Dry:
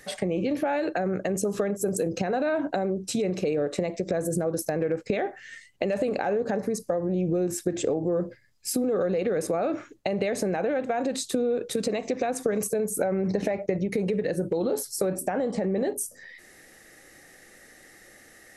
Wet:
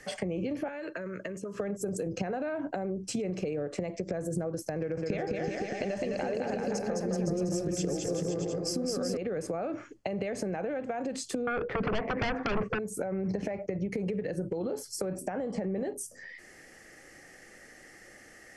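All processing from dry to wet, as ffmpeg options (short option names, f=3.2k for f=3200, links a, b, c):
-filter_complex "[0:a]asettb=1/sr,asplit=3[a][b][c];[a]atrim=end=0.684[d];[b]atrim=start=0.68:end=1.6,asetpts=PTS-STARTPTS,afade=t=in:d=0.004:c=qsin,afade=t=out:st=0.916:d=0.004:c=qsin,asuperstop=centerf=770:order=8:qfactor=4.2,acrossover=split=1100|2300[e][f][g];[e]acompressor=threshold=-37dB:ratio=4[h];[f]acompressor=threshold=-41dB:ratio=4[i];[g]acompressor=threshold=-51dB:ratio=4[j];[h][i][j]amix=inputs=3:normalize=0[k];[c]atrim=start=1.596[l];[d][k]acrossfade=d=0.004:c1=hsin:c2=qsin[m];[m][l]acrossfade=d=0.004:c1=qsin:c2=hsin,asettb=1/sr,asplit=3[n][o][p];[n]atrim=end=4.764[q];[o]atrim=start=4.76:end=9.17,asetpts=PTS-STARTPTS,afade=t=in:d=0.004:c=qsin,afade=t=out:st=4.406:d=0.004:c=qsin,equalizer=f=5.4k:t=o:w=0.79:g=11.5,aecho=1:1:210|378|512.4|619.9|705.9:0.794|0.631|0.501|0.398|0.316,atrim=end_sample=194481[r];[p]atrim=start=9.166[s];[q][r]acrossfade=d=0.004:c1=hsin:c2=qsin[t];[t][s]acrossfade=d=0.004:c1=qsin:c2=hsin,asettb=1/sr,asplit=3[u][v][w];[u]atrim=end=11.474[x];[v]atrim=start=11.47:end=12.79,asetpts=PTS-STARTPTS,afade=t=in:d=0.004:c=qsin,afade=t=out:st=1.316:d=0.004:c=qsin,lowpass=f=1.9k:w=0.5412,lowpass=f=1.9k:w=1.3066,lowshelf=f=430:g=-11,aeval=exprs='0.15*sin(PI/2*6.31*val(0)/0.15)':c=same[y];[w]atrim=start=12.786[z];[x][y]acrossfade=d=0.004:c1=hsin:c2=qsin[aa];[aa][z]acrossfade=d=0.004:c1=qsin:c2=hsin,lowpass=7.9k,bandreject=f=3.8k:w=5.1,acrossover=split=140[ab][ac];[ac]acompressor=threshold=-33dB:ratio=3[ad];[ab][ad]amix=inputs=2:normalize=0"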